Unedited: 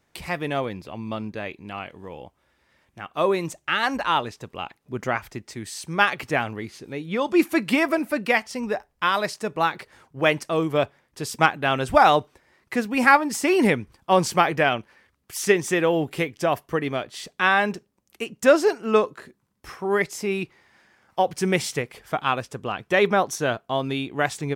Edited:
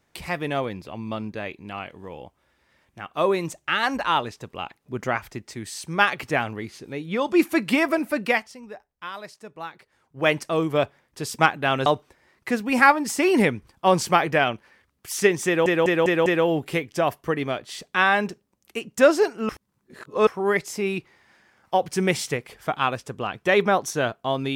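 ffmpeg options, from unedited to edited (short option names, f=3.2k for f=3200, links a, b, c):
-filter_complex "[0:a]asplit=10[a][b][c][d][e][f][g][h][i][j];[a]atrim=end=8.57,asetpts=PTS-STARTPTS,afade=t=out:st=8.29:d=0.28:silence=0.211349[k];[b]atrim=start=8.57:end=10.02,asetpts=PTS-STARTPTS,volume=-13.5dB[l];[c]atrim=start=10.02:end=11.862,asetpts=PTS-STARTPTS,afade=t=in:d=0.28:silence=0.211349[m];[d]atrim=start=12.108:end=15.912[n];[e]atrim=start=15.708:end=15.912[o];[f]atrim=start=15.708:end=15.912[p];[g]atrim=start=15.708:end=15.912[q];[h]atrim=start=15.708:end=18.942[r];[i]atrim=start=18.938:end=19.722,asetpts=PTS-STARTPTS,areverse[s];[j]atrim=start=19.718[t];[k][l][m]concat=n=3:v=0:a=1[u];[u][n]acrossfade=d=0.004:c1=hsin:c2=hsin[v];[v][o]acrossfade=d=0.004:c1=hsin:c2=hsin[w];[w][p]acrossfade=d=0.004:c1=hsin:c2=hsin[x];[x][q]acrossfade=d=0.004:c1=hsin:c2=hsin[y];[y][r]acrossfade=d=0.004:c1=hsin:c2=hsin[z];[z][s]acrossfade=d=0.004:c1=hsin:c2=hsin[aa];[aa][t]acrossfade=d=0.004:c1=hsin:c2=hsin"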